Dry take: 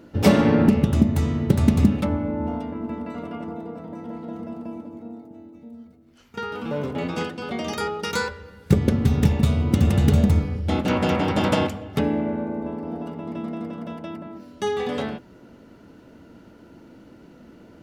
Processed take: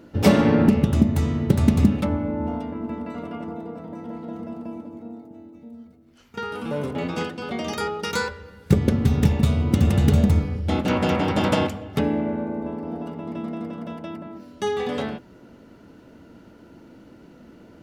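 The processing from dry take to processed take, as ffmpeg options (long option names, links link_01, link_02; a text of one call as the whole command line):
ffmpeg -i in.wav -filter_complex "[0:a]asettb=1/sr,asplit=3[link_01][link_02][link_03];[link_01]atrim=end=6.454[link_04];[link_02]atrim=start=6.45:end=6.91,asetpts=PTS-STARTPTS,afade=type=in:duration=0.004:curve=qsin,afade=type=out:start_time=0.456:duration=0.004:curve=qsin,equalizer=frequency=9900:width_type=o:width=0.53:gain=12.5[link_05];[link_03]atrim=start=6.906[link_06];[link_04][link_05]acrossfade=duration=0.004:curve1=hsin:curve2=qsin[link_07];[link_07][link_06]acrossfade=duration=0.004:curve1=qsin:curve2=hsin" out.wav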